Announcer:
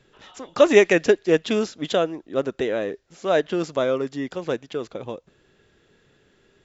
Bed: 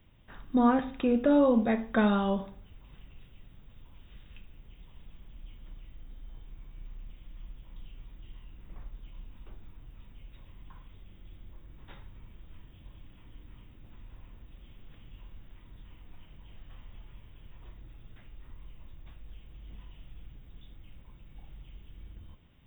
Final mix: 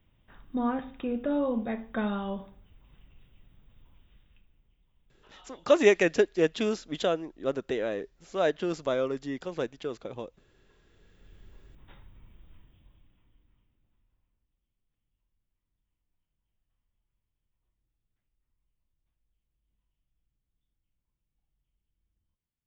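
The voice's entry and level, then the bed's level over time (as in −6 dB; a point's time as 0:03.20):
5.10 s, −6.0 dB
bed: 0:03.89 −5.5 dB
0:04.83 −18.5 dB
0:10.74 −18.5 dB
0:11.37 −4 dB
0:12.48 −4 dB
0:14.67 −32.5 dB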